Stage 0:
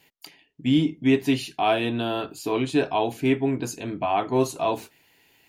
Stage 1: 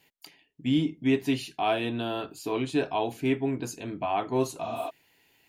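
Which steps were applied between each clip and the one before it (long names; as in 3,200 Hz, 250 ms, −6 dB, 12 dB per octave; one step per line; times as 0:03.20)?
healed spectral selection 0:04.65–0:04.87, 270–7,400 Hz before
level −4.5 dB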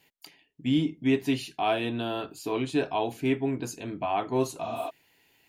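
no processing that can be heard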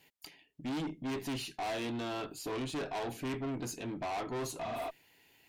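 tube saturation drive 34 dB, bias 0.25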